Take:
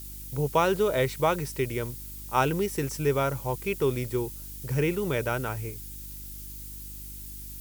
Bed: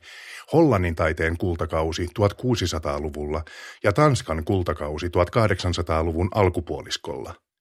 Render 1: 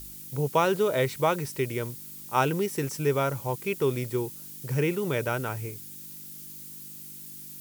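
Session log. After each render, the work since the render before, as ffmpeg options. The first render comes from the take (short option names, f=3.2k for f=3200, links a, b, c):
-af "bandreject=f=50:t=h:w=4,bandreject=f=100:t=h:w=4"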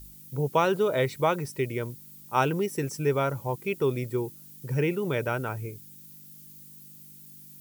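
-af "afftdn=nr=9:nf=-43"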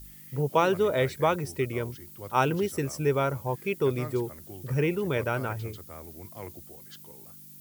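-filter_complex "[1:a]volume=-22.5dB[a];[0:a][a]amix=inputs=2:normalize=0"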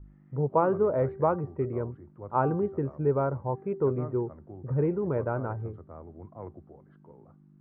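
-af "lowpass=f=1.2k:w=0.5412,lowpass=f=1.2k:w=1.3066,bandreject=f=388.9:t=h:w=4,bandreject=f=777.8:t=h:w=4,bandreject=f=1.1667k:t=h:w=4,bandreject=f=1.5556k:t=h:w=4,bandreject=f=1.9445k:t=h:w=4"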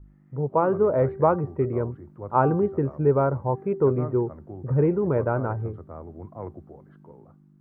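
-af "dynaudnorm=f=200:g=7:m=5.5dB"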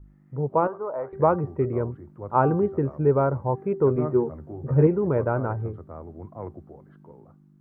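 -filter_complex "[0:a]asettb=1/sr,asplit=3[a][b][c];[a]atrim=end=0.674[d];[b]atrim=start=0.67:end=1.13,asetpts=PTS-STARTPTS,afade=t=in:d=0.004:c=qsin,afade=t=out:st=0.456:d=0.004:c=qsin,bandpass=f=950:t=q:w=2.1[e];[c]atrim=start=1.126[f];[d][e]acrossfade=d=0.004:c1=hsin:c2=qsin[g];[g][f]acrossfade=d=0.004:c1=qsin:c2=hsin,asettb=1/sr,asplit=3[h][i][j];[h]atrim=end=3.954[k];[i]atrim=start=3.95:end=4.87,asetpts=PTS-STARTPTS,afade=t=in:d=0.004:c=qsin,afade=t=out:st=0.916:d=0.004:c=qsin,asplit=2[l][m];[m]adelay=13,volume=-3dB[n];[l][n]amix=inputs=2:normalize=0,atrim=end_sample=40572[o];[j]atrim=start=4.866[p];[k][o]acrossfade=d=0.004:c1=hsin:c2=qsin[q];[q][p]acrossfade=d=0.004:c1=qsin:c2=hsin"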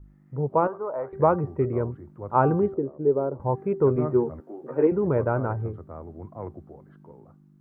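-filter_complex "[0:a]asettb=1/sr,asplit=3[a][b][c];[a]atrim=end=2.744[d];[b]atrim=start=2.74:end=3.4,asetpts=PTS-STARTPTS,afade=t=in:d=0.004:c=qsin,afade=t=out:st=0.656:d=0.004:c=qsin,bandpass=f=380:t=q:w=1.5[e];[c]atrim=start=3.396[f];[d][e]acrossfade=d=0.004:c1=hsin:c2=qsin[g];[g][f]acrossfade=d=0.004:c1=qsin:c2=hsin,asettb=1/sr,asplit=3[h][i][j];[h]atrim=end=4.404[k];[i]atrim=start=4.4:end=4.92,asetpts=PTS-STARTPTS,afade=t=in:d=0.004:c=qsin,afade=t=out:st=0.516:d=0.004:c=qsin,highpass=f=260:w=0.5412,highpass=f=260:w=1.3066[l];[j]atrim=start=4.916[m];[k][l]acrossfade=d=0.004:c1=hsin:c2=qsin[n];[n][m]acrossfade=d=0.004:c1=qsin:c2=hsin"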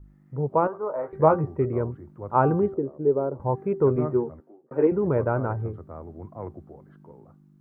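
-filter_complex "[0:a]asettb=1/sr,asplit=3[a][b][c];[a]atrim=end=0.814[d];[b]atrim=start=0.81:end=1.45,asetpts=PTS-STARTPTS,afade=t=in:d=0.004:c=qsin,afade=t=out:st=0.636:d=0.004:c=qsin,asplit=2[e][f];[f]adelay=19,volume=-6.5dB[g];[e][g]amix=inputs=2:normalize=0,atrim=end_sample=28224[h];[c]atrim=start=1.446[i];[d][h]acrossfade=d=0.004:c1=hsin:c2=qsin[j];[j][i]acrossfade=d=0.004:c1=qsin:c2=hsin,asplit=2[k][l];[k]atrim=end=4.71,asetpts=PTS-STARTPTS,afade=t=out:st=4.03:d=0.68[m];[l]atrim=start=4.71,asetpts=PTS-STARTPTS,afade=t=in:d=0.004:c=hsin[n];[m][n]concat=n=2:v=0:a=1"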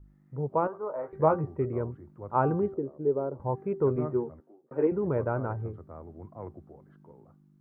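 -af "volume=-5dB"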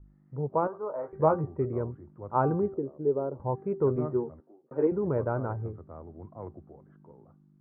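-af "lowpass=1.7k"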